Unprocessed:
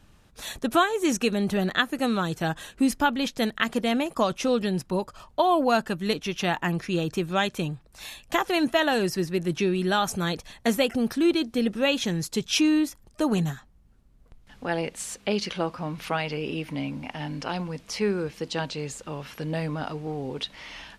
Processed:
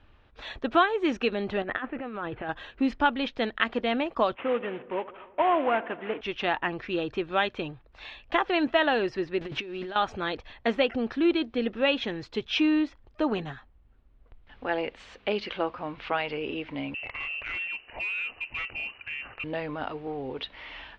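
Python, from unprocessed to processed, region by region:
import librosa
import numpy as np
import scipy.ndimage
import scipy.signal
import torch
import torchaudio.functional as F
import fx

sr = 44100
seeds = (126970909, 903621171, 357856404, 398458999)

y = fx.chain(x, sr, fx.cheby2_lowpass(hz=6600.0, order=4, stop_db=50),
    fx.over_compress(threshold_db=-31.0, ratio=-1.0), at=(1.62, 2.49))
y = fx.chain(y, sr, fx.cvsd(bps=16000),
    fx.highpass(hz=300.0, slope=6),
    fx.echo_filtered(ms=81, feedback_pct=73, hz=2000.0, wet_db=-17), at=(4.35, 6.21))
y = fx.chain(y, sr, fx.crossing_spikes(level_db=-26.5),
    fx.lowpass(hz=7300.0, slope=12),
    fx.over_compress(threshold_db=-29.0, ratio=-0.5), at=(9.41, 9.96))
y = fx.chain(y, sr, fx.freq_invert(carrier_hz=2900),
    fx.overload_stage(gain_db=29.0), at=(16.94, 19.44))
y = scipy.signal.sosfilt(scipy.signal.butter(4, 3400.0, 'lowpass', fs=sr, output='sos'), y)
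y = fx.peak_eq(y, sr, hz=170.0, db=-14.0, octaves=0.68)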